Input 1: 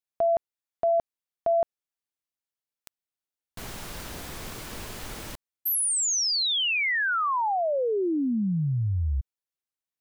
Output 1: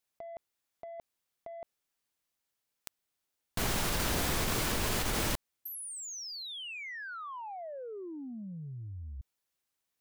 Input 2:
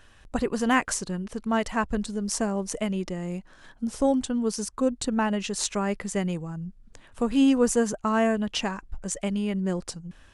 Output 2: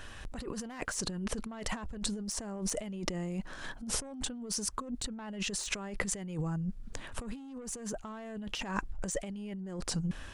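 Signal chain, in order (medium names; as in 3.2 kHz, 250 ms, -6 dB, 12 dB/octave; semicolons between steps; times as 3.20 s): saturation -19.5 dBFS; compressor with a negative ratio -38 dBFS, ratio -1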